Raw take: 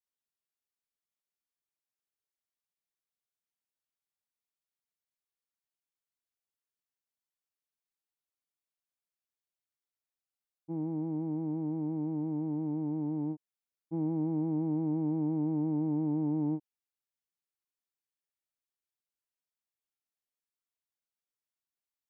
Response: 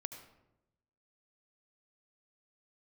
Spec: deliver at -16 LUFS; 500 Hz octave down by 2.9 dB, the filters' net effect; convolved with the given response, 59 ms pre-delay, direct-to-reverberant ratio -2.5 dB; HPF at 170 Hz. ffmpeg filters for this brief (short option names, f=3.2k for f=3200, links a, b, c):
-filter_complex "[0:a]highpass=170,equalizer=f=500:t=o:g=-5,asplit=2[a][b];[1:a]atrim=start_sample=2205,adelay=59[c];[b][c]afir=irnorm=-1:irlink=0,volume=5dB[d];[a][d]amix=inputs=2:normalize=0,volume=15dB"